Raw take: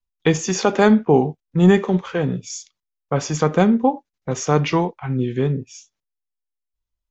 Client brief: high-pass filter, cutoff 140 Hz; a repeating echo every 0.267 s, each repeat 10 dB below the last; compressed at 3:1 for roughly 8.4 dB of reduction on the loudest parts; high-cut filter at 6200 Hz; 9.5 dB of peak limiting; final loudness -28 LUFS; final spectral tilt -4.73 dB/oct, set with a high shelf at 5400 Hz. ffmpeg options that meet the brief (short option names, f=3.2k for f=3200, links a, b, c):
-af "highpass=140,lowpass=6.2k,highshelf=f=5.4k:g=8.5,acompressor=threshold=-21dB:ratio=3,alimiter=limit=-15dB:level=0:latency=1,aecho=1:1:267|534|801|1068:0.316|0.101|0.0324|0.0104,volume=-1.5dB"